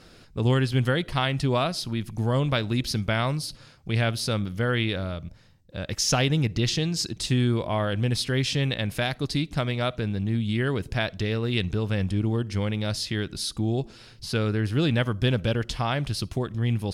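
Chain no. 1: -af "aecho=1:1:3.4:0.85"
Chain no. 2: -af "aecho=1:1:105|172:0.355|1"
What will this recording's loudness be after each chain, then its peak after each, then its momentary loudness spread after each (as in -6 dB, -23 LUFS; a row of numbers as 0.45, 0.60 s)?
-25.5, -23.0 LUFS; -8.5, -5.5 dBFS; 7, 6 LU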